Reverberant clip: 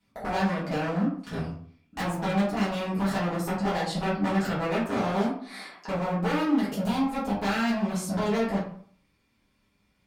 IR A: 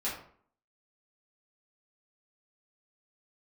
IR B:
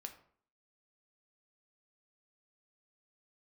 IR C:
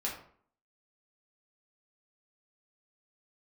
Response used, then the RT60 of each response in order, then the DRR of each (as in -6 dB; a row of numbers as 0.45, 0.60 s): A; 0.55, 0.55, 0.55 s; -9.5, 5.0, -4.5 dB